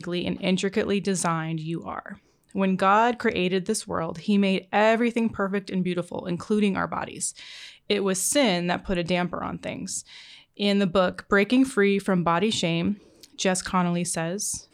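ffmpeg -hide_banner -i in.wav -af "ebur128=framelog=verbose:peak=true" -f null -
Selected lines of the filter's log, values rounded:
Integrated loudness:
  I:         -24.6 LUFS
  Threshold: -35.0 LUFS
Loudness range:
  LRA:         2.9 LU
  Threshold: -44.8 LUFS
  LRA low:   -26.2 LUFS
  LRA high:  -23.4 LUFS
True peak:
  Peak:       -9.1 dBFS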